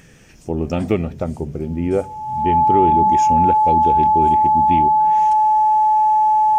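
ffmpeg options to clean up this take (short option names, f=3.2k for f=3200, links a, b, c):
-af "bandreject=f=860:w=30"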